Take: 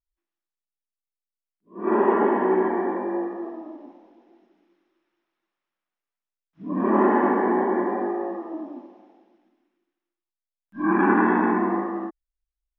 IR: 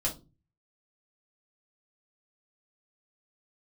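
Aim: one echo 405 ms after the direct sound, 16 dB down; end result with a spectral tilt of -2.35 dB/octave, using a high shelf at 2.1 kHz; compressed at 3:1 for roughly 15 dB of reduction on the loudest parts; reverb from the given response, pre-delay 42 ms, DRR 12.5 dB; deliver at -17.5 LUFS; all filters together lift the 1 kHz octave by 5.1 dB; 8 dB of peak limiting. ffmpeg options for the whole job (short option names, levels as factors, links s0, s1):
-filter_complex "[0:a]equalizer=f=1000:t=o:g=7.5,highshelf=f=2100:g=-8,acompressor=threshold=0.02:ratio=3,alimiter=level_in=1.5:limit=0.0631:level=0:latency=1,volume=0.668,aecho=1:1:405:0.158,asplit=2[s0][s1];[1:a]atrim=start_sample=2205,adelay=42[s2];[s1][s2]afir=irnorm=-1:irlink=0,volume=0.133[s3];[s0][s3]amix=inputs=2:normalize=0,volume=8.91"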